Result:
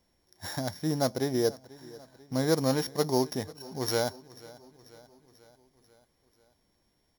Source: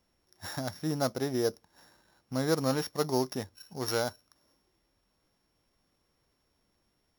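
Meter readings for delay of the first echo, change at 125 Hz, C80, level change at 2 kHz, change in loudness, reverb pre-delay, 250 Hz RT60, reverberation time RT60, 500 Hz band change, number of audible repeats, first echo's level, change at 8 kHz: 0.49 s, +2.5 dB, none, +0.5 dB, +2.5 dB, none, none, none, +2.5 dB, 4, -21.0 dB, +2.5 dB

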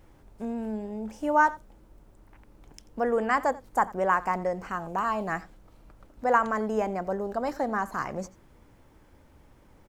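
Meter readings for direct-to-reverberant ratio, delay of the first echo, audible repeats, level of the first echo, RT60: none, 87 ms, 1, -20.0 dB, none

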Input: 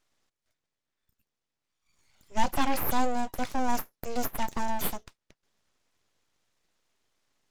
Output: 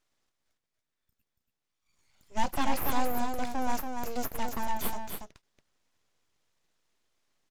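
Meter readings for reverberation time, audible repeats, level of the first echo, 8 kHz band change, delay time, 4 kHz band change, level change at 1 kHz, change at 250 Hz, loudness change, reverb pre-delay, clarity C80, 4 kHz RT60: none, 1, -5.5 dB, -2.0 dB, 0.282 s, -2.0 dB, -2.0 dB, -2.0 dB, -2.5 dB, none, none, none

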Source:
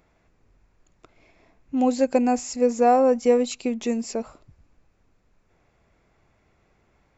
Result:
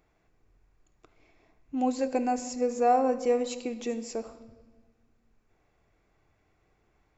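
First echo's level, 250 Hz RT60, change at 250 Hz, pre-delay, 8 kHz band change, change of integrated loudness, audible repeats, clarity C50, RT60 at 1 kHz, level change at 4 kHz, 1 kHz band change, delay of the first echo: none, 1.9 s, -8.0 dB, 3 ms, n/a, -6.5 dB, none, 12.5 dB, 1.3 s, -6.0 dB, -4.0 dB, none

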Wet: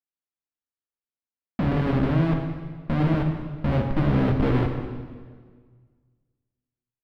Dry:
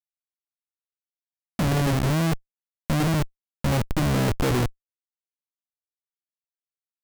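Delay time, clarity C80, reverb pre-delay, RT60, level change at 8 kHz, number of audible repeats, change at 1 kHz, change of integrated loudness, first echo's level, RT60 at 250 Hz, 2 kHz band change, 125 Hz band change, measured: none, 6.5 dB, 4 ms, 1.7 s, under -25 dB, none, -1.5 dB, +0.5 dB, none, 1.8 s, -3.0 dB, +1.0 dB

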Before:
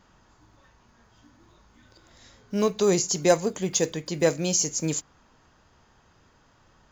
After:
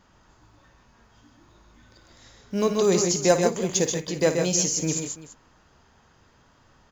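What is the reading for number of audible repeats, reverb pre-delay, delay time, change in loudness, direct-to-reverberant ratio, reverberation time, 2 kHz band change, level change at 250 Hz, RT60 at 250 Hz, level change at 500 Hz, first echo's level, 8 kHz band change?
3, none, 56 ms, +1.5 dB, none, none, +1.5 dB, +1.5 dB, none, +1.5 dB, -12.0 dB, +1.5 dB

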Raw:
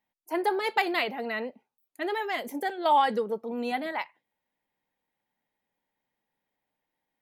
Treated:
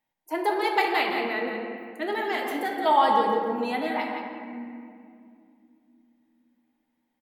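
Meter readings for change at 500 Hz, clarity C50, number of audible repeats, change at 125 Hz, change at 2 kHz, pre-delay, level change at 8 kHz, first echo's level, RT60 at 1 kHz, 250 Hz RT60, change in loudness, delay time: +3.0 dB, 1.0 dB, 1, n/a, +3.0 dB, 3 ms, n/a, -6.5 dB, 2.2 s, 4.1 s, +3.0 dB, 0.171 s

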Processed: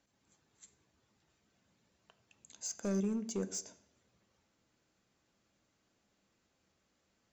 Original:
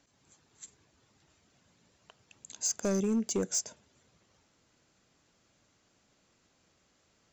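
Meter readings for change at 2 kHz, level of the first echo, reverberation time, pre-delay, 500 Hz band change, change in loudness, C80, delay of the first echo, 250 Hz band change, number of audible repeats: -7.0 dB, none, 0.70 s, 3 ms, -6.5 dB, -6.0 dB, 18.5 dB, none, -4.5 dB, none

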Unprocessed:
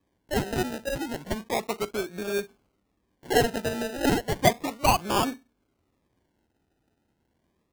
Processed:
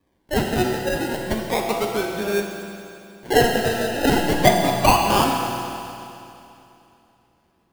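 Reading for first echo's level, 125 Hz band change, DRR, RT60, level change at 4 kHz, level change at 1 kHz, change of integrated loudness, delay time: none, +6.5 dB, 0.5 dB, 2.8 s, +7.0 dB, +7.5 dB, +6.5 dB, none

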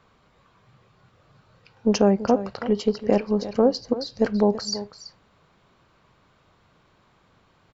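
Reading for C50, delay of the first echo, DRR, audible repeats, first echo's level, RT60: none, 0.332 s, none, 1, -13.5 dB, none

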